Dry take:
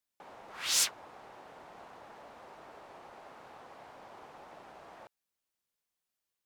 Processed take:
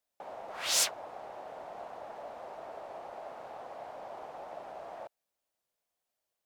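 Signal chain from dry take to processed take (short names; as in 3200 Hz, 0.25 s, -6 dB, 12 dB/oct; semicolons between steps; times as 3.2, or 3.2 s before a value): bell 640 Hz +11.5 dB 0.89 oct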